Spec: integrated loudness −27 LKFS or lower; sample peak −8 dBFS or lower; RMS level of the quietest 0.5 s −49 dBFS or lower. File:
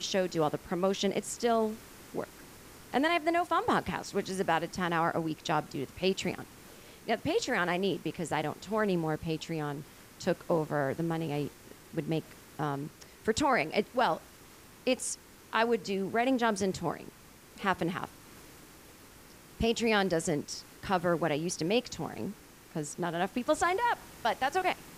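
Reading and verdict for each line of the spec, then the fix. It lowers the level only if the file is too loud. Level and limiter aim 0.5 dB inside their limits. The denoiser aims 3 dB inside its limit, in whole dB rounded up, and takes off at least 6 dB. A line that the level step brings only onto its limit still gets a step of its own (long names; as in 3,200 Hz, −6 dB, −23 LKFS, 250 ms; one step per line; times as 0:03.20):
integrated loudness −31.5 LKFS: in spec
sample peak −13.5 dBFS: in spec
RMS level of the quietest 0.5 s −54 dBFS: in spec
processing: no processing needed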